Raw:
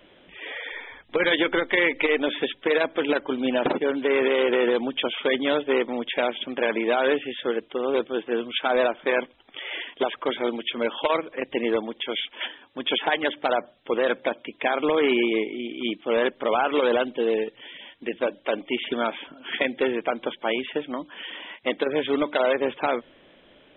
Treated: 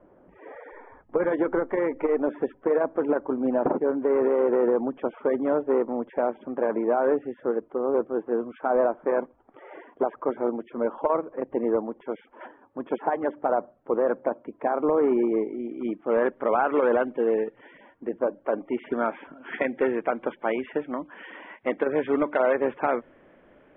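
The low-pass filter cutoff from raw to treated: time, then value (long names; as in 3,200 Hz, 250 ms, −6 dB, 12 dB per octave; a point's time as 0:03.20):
low-pass filter 24 dB per octave
0:15.21 1,200 Hz
0:16.49 1,700 Hz
0:17.70 1,700 Hz
0:18.16 1,200 Hz
0:19.33 1,900 Hz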